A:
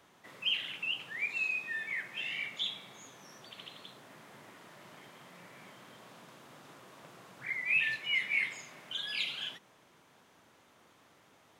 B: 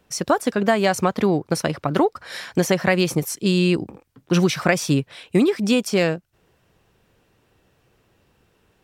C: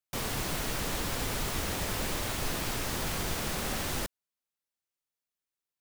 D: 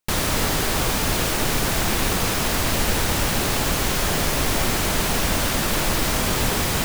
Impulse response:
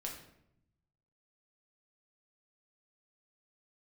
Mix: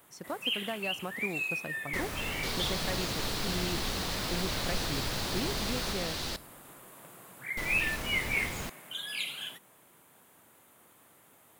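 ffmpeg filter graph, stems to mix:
-filter_complex "[0:a]aexciter=amount=3.7:drive=10:freq=8k,volume=1dB[a];[1:a]acrusher=bits=5:mode=log:mix=0:aa=0.000001,volume=-19dB[b];[2:a]equalizer=f=4.3k:w=1.4:g=12.5,adelay=2300,volume=-5.5dB,asplit=2[c][d];[d]volume=-13.5dB[e];[3:a]adelay=1850,volume=-15dB,asplit=3[f][g][h];[f]atrim=end=5.93,asetpts=PTS-STARTPTS,afade=t=out:st=5.926:d=0.004:c=hsin[i];[g]atrim=start=5.93:end=7.57,asetpts=PTS-STARTPTS,volume=0[j];[h]atrim=start=7.57,asetpts=PTS-STARTPTS,afade=t=in:d=0.004:c=hsin[k];[i][j][k]concat=n=3:v=0:a=1[l];[4:a]atrim=start_sample=2205[m];[e][m]afir=irnorm=-1:irlink=0[n];[a][b][c][l][n]amix=inputs=5:normalize=0,highshelf=f=4.3k:g=-5"

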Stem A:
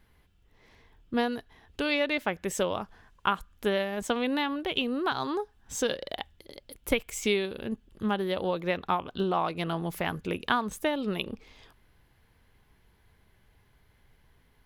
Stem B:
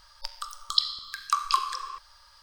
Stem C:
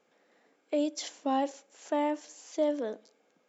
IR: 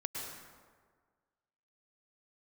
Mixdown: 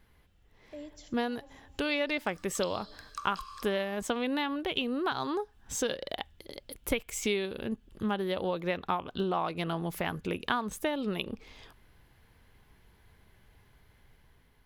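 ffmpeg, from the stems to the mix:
-filter_complex "[0:a]dynaudnorm=f=380:g=5:m=3dB,volume=-0.5dB,asplit=2[a][b];[1:a]adelay=1850,volume=-17.5dB,asplit=2[c][d];[d]volume=-4.5dB[e];[2:a]volume=-17dB,asplit=2[f][g];[g]volume=-13.5dB[h];[b]apad=whole_len=153835[i];[f][i]sidechaincompress=threshold=-40dB:ratio=8:attack=16:release=200[j];[3:a]atrim=start_sample=2205[k];[e][h]amix=inputs=2:normalize=0[l];[l][k]afir=irnorm=-1:irlink=0[m];[a][c][j][m]amix=inputs=4:normalize=0,acompressor=threshold=-36dB:ratio=1.5"

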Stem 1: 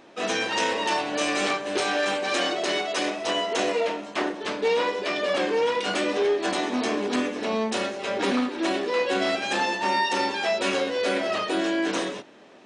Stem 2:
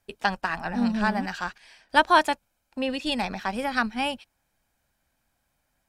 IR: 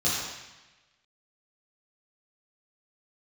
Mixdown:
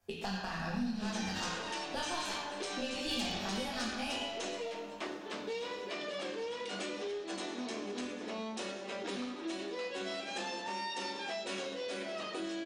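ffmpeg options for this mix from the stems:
-filter_complex "[0:a]adelay=850,volume=-10.5dB,asplit=2[a][b];[b]volume=-19dB[c];[1:a]aeval=exprs='if(lt(val(0),0),0.708*val(0),val(0))':c=same,acompressor=threshold=-32dB:ratio=3,flanger=delay=22.5:depth=7:speed=0.77,volume=2dB,asplit=2[d][e];[e]volume=-8dB[f];[2:a]atrim=start_sample=2205[g];[c][f]amix=inputs=2:normalize=0[h];[h][g]afir=irnorm=-1:irlink=0[i];[a][d][i]amix=inputs=3:normalize=0,acrossover=split=130|3000[j][k][l];[k]acompressor=threshold=-38dB:ratio=5[m];[j][m][l]amix=inputs=3:normalize=0,aeval=exprs='0.0473*(abs(mod(val(0)/0.0473+3,4)-2)-1)':c=same"

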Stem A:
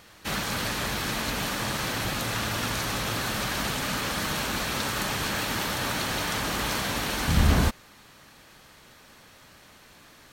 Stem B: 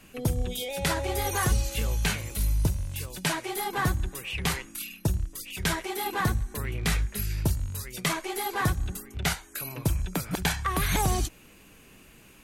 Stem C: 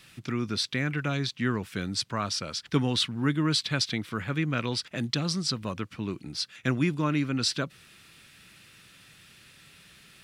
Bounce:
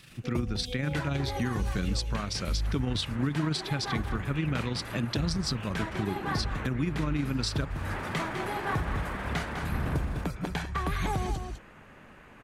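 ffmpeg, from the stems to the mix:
-filter_complex "[0:a]lowpass=f=2.2k:w=0.5412,lowpass=f=2.2k:w=1.3066,acompressor=threshold=-44dB:ratio=1.5,adelay=2350,volume=-0.5dB,asplit=2[a][b];[b]volume=-3.5dB[c];[1:a]aemphasis=mode=reproduction:type=75fm,adelay=100,volume=-3.5dB,asplit=2[d][e];[e]volume=-8dB[f];[2:a]lowshelf=f=250:g=7,tremolo=f=25:d=0.462,volume=1.5dB,asplit=2[g][h];[h]apad=whole_len=559117[i];[a][i]sidechaincompress=threshold=-48dB:ratio=8:attack=16:release=141[j];[c][f]amix=inputs=2:normalize=0,aecho=0:1:203:1[k];[j][d][g][k]amix=inputs=4:normalize=0,alimiter=limit=-19dB:level=0:latency=1:release=294"

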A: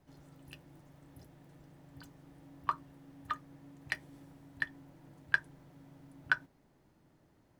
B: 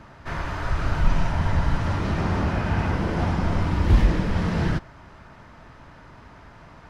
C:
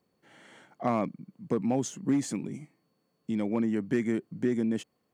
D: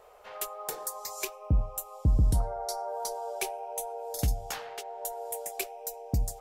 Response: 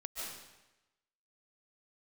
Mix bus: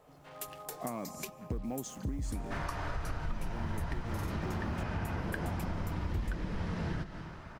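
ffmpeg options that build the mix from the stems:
-filter_complex "[0:a]volume=-2.5dB[a];[1:a]adelay=2250,volume=-4dB,asplit=2[b][c];[c]volume=-10.5dB[d];[2:a]acrusher=bits=7:mix=0:aa=0.5,acompressor=threshold=-28dB:ratio=2,volume=-5dB,asplit=2[e][f];[f]volume=-17.5dB[g];[3:a]volume=-7.5dB,asplit=2[h][i];[i]volume=-23.5dB[j];[4:a]atrim=start_sample=2205[k];[d][g][j]amix=inputs=3:normalize=0[l];[l][k]afir=irnorm=-1:irlink=0[m];[a][b][e][h][m]amix=inputs=5:normalize=0,acompressor=threshold=-33dB:ratio=5"

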